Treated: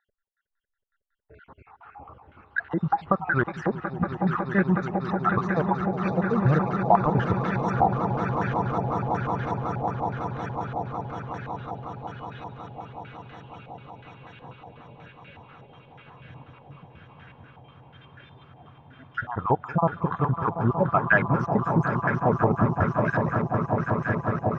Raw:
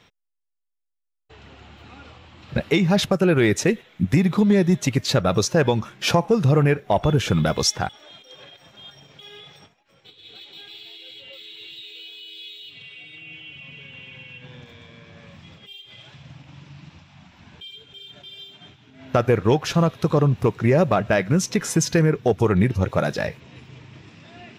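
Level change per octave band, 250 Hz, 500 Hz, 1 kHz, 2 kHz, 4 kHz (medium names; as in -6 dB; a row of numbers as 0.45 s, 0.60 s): -4.5 dB, -6.0 dB, +4.0 dB, +0.5 dB, -21.5 dB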